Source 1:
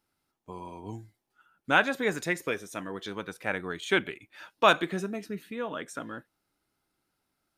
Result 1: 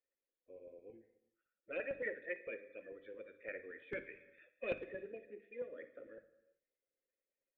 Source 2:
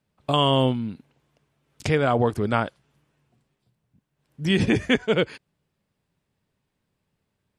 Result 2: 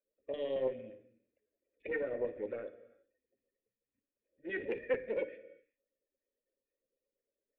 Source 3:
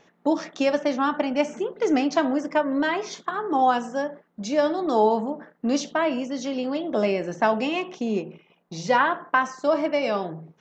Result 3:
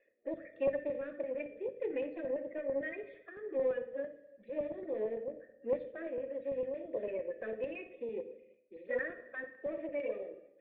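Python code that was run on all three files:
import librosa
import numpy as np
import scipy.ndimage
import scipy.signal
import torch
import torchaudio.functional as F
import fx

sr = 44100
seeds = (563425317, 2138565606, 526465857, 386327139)

p1 = fx.spec_quant(x, sr, step_db=30)
p2 = fx.peak_eq(p1, sr, hz=75.0, db=-14.5, octaves=0.5)
p3 = np.clip(p2, -10.0 ** (-21.5 / 20.0), 10.0 ** (-21.5 / 20.0))
p4 = p2 + F.gain(torch.from_numpy(p3), -5.0).numpy()
p5 = fx.formant_cascade(p4, sr, vowel='e')
p6 = fx.fixed_phaser(p5, sr, hz=370.0, stages=4)
p7 = fx.filter_lfo_notch(p6, sr, shape='saw_up', hz=8.9, low_hz=220.0, high_hz=2400.0, q=1.3)
p8 = fx.hum_notches(p7, sr, base_hz=50, count=6)
p9 = fx.room_flutter(p8, sr, wall_m=10.0, rt60_s=0.23)
p10 = fx.rev_gated(p9, sr, seeds[0], gate_ms=420, shape='falling', drr_db=11.5)
p11 = fx.doppler_dist(p10, sr, depth_ms=0.11)
y = F.gain(torch.from_numpy(p11), -2.5).numpy()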